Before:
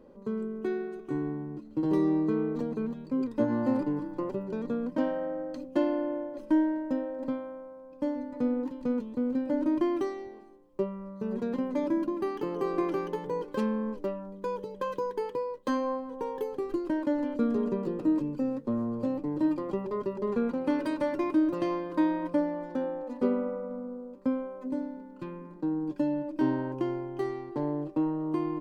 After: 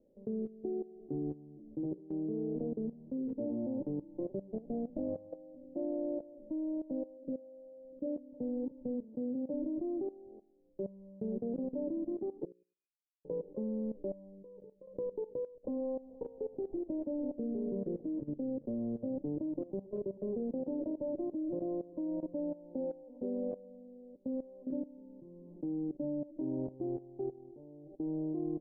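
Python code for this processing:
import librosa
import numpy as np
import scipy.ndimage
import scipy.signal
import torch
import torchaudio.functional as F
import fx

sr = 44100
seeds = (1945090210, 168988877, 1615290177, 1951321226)

y = fx.room_flutter(x, sr, wall_m=11.2, rt60_s=0.47, at=(2.94, 3.66))
y = fx.lower_of_two(y, sr, delay_ms=0.41, at=(4.5, 5.29), fade=0.02)
y = fx.envelope_sharpen(y, sr, power=2.0, at=(7.16, 8.39), fade=0.02)
y = fx.highpass(y, sr, hz=61.0, slope=12, at=(9.03, 9.54))
y = fx.delta_mod(y, sr, bps=64000, step_db=-34.5, at=(15.64, 17.32))
y = fx.over_compress(y, sr, threshold_db=-43.0, ratio=-1.0, at=(27.31, 28.0))
y = fx.edit(y, sr, fx.fade_in_span(start_s=1.93, length_s=0.48),
    fx.bleep(start_s=12.45, length_s=0.8, hz=2470.0, db=-13.0),
    fx.fade_out_to(start_s=14.19, length_s=0.68, floor_db=-20.0), tone=tone)
y = scipy.signal.sosfilt(scipy.signal.butter(8, 710.0, 'lowpass', fs=sr, output='sos'), y)
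y = fx.hum_notches(y, sr, base_hz=60, count=9)
y = fx.level_steps(y, sr, step_db=17)
y = y * 10.0 ** (-1.5 / 20.0)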